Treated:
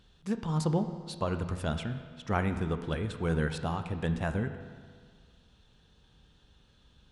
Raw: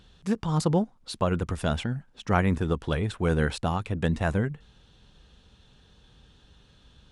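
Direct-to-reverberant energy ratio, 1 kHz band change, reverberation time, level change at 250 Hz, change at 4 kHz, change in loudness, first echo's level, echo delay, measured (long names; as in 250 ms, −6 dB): 8.0 dB, −5.5 dB, 1.8 s, −5.0 dB, −5.5 dB, −5.0 dB, no echo audible, no echo audible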